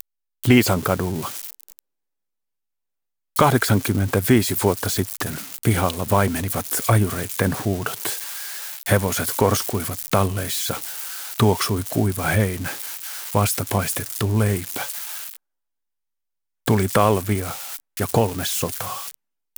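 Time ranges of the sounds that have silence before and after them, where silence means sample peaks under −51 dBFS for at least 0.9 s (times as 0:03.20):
0:03.36–0:15.36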